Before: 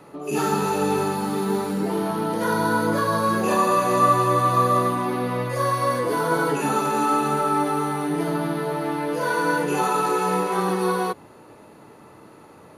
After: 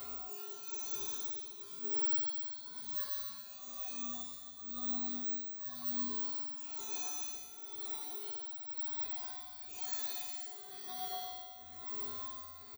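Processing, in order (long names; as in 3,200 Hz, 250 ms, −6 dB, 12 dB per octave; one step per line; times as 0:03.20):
hum removal 85.16 Hz, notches 18
on a send at −14.5 dB: convolution reverb RT60 2.6 s, pre-delay 70 ms
on the sum: upward compression, threshold −35 dBFS
bad sample-rate conversion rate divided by 2×, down filtered, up zero stuff
single-tap delay 114 ms −7 dB
reversed playback
downward compressor 5 to 1, threshold −29 dBFS, peak gain reduction 17.5 dB
reversed playback
bass and treble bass +10 dB, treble +11 dB
comb filter 2.8 ms, depth 74%
reverb reduction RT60 0.63 s
octave-band graphic EQ 125/500/1,000/4,000 Hz −3/−8/+8/+11 dB
amplitude tremolo 1 Hz, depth 75%
tuned comb filter 81 Hz, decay 1.4 s, harmonics odd, mix 100%
level +7.5 dB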